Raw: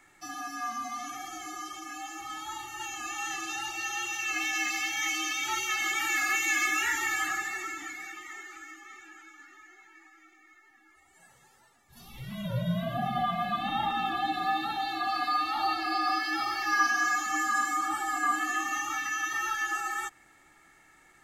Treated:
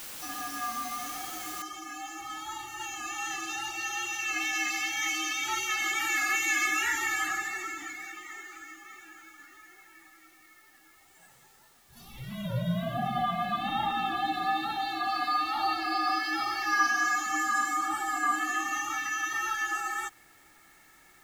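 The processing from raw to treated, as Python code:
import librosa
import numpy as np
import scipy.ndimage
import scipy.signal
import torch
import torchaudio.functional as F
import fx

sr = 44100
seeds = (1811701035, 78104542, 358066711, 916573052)

y = fx.noise_floor_step(x, sr, seeds[0], at_s=1.62, before_db=-42, after_db=-63, tilt_db=0.0)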